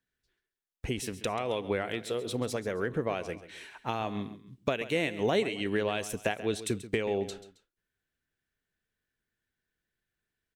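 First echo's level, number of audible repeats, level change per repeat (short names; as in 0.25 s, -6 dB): -14.5 dB, 2, -8.5 dB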